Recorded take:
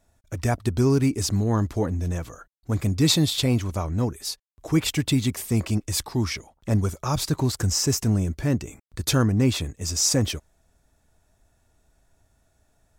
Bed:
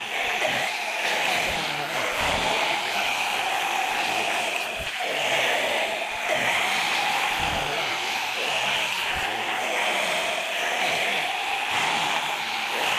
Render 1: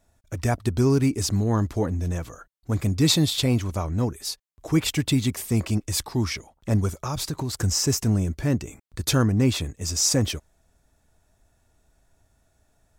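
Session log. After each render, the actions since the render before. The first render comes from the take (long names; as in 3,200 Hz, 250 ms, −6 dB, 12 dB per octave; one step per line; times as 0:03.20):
0:06.92–0:07.53: downward compressor, threshold −24 dBFS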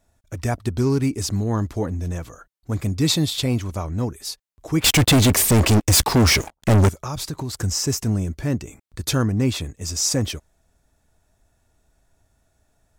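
0:00.55–0:01.02: phase distortion by the signal itself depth 0.053 ms
0:04.84–0:06.89: leveller curve on the samples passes 5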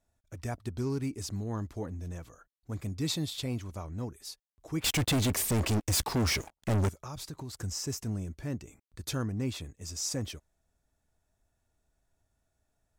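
level −12.5 dB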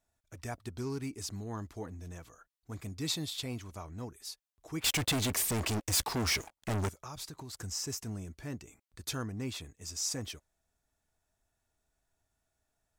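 low-shelf EQ 440 Hz −6.5 dB
notch filter 550 Hz, Q 12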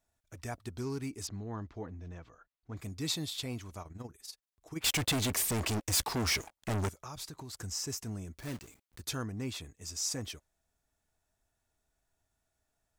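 0:01.27–0:02.77: high-frequency loss of the air 190 metres
0:03.82–0:04.83: amplitude modulation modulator 21 Hz, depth 55%
0:08.38–0:09.03: one scale factor per block 3 bits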